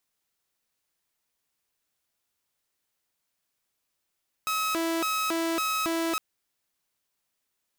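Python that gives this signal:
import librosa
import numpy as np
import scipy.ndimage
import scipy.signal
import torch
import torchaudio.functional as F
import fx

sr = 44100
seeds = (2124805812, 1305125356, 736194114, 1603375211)

y = fx.siren(sr, length_s=1.71, kind='hi-lo', low_hz=330.0, high_hz=1280.0, per_s=1.8, wave='saw', level_db=-23.0)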